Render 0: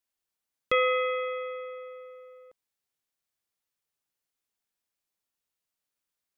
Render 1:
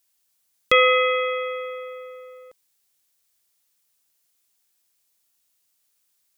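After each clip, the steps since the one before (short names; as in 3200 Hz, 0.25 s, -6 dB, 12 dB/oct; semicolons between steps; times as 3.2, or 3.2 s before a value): high shelf 3300 Hz +12 dB; gain +6.5 dB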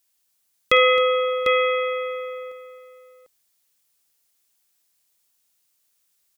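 tapped delay 53/266/748 ms -15.5/-14.5/-6.5 dB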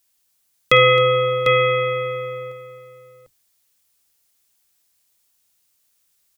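octaver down 2 oct, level 0 dB; gain +3 dB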